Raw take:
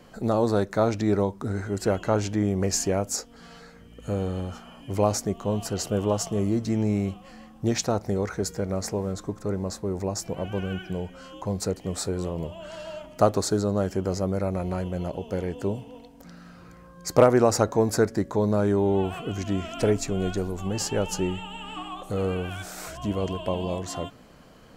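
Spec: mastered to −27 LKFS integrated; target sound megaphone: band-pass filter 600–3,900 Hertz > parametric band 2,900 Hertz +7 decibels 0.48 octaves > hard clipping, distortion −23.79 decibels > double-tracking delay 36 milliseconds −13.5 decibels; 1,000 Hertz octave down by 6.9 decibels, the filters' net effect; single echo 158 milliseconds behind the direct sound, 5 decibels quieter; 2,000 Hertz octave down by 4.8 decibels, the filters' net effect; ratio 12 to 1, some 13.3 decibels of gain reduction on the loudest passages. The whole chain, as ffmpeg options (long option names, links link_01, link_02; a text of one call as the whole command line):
ffmpeg -i in.wav -filter_complex "[0:a]equalizer=frequency=1000:width_type=o:gain=-7,equalizer=frequency=2000:width_type=o:gain=-6.5,acompressor=threshold=-27dB:ratio=12,highpass=600,lowpass=3900,equalizer=frequency=2900:width_type=o:width=0.48:gain=7,aecho=1:1:158:0.562,asoftclip=type=hard:threshold=-28.5dB,asplit=2[link_01][link_02];[link_02]adelay=36,volume=-13.5dB[link_03];[link_01][link_03]amix=inputs=2:normalize=0,volume=13.5dB" out.wav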